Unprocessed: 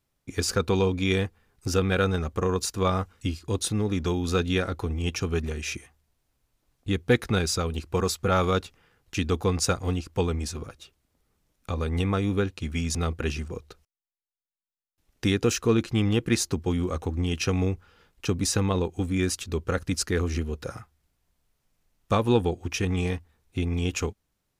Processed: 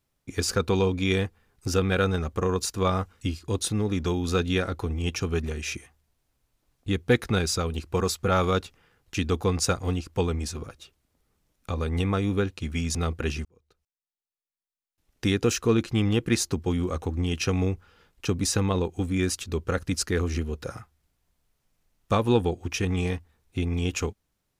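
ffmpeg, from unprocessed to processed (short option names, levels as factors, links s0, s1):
-filter_complex "[0:a]asplit=2[s0][s1];[s0]atrim=end=13.45,asetpts=PTS-STARTPTS,afade=t=out:st=13.446:d=0.004:c=hsin[s2];[s1]atrim=start=13.45,asetpts=PTS-STARTPTS,afade=t=in:d=1.92[s3];[s2][s3]concat=n=2:v=0:a=1"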